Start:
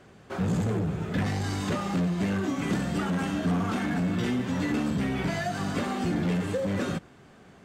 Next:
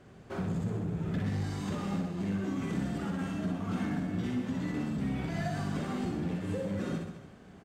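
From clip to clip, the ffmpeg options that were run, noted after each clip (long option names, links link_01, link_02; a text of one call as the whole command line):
ffmpeg -i in.wav -filter_complex "[0:a]lowshelf=frequency=430:gain=6.5,acompressor=threshold=-26dB:ratio=6,asplit=2[link_01][link_02];[link_02]aecho=0:1:60|126|198.6|278.5|366.3:0.631|0.398|0.251|0.158|0.1[link_03];[link_01][link_03]amix=inputs=2:normalize=0,volume=-6.5dB" out.wav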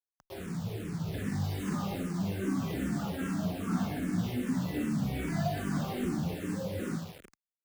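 ffmpeg -i in.wav -filter_complex "[0:a]dynaudnorm=framelen=250:gausssize=9:maxgain=6.5dB,acrusher=bits=6:mix=0:aa=0.000001,asplit=2[link_01][link_02];[link_02]afreqshift=-2.5[link_03];[link_01][link_03]amix=inputs=2:normalize=1,volume=-2.5dB" out.wav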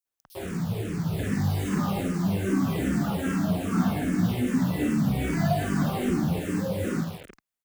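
ffmpeg -i in.wav -filter_complex "[0:a]acrossover=split=4700[link_01][link_02];[link_01]adelay=50[link_03];[link_03][link_02]amix=inputs=2:normalize=0,volume=7dB" out.wav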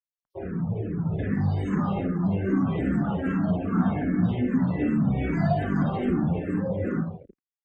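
ffmpeg -i in.wav -af "afftdn=noise_reduction=34:noise_floor=-39,lowpass=frequency=3600:poles=1,volume=1dB" out.wav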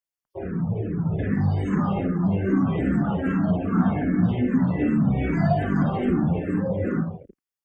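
ffmpeg -i in.wav -af "bandreject=frequency=3900:width=5.9,volume=2.5dB" out.wav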